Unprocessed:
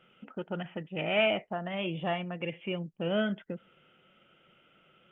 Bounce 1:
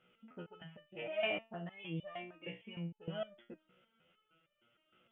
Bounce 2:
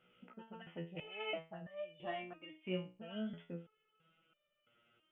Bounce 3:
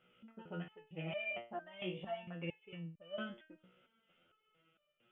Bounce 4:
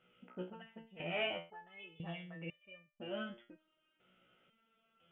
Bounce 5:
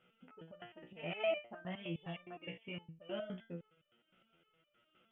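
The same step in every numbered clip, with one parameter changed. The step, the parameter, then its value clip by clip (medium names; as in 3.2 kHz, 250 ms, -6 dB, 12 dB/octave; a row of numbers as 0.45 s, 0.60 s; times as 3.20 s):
resonator arpeggio, rate: 6.5 Hz, 3 Hz, 4.4 Hz, 2 Hz, 9.7 Hz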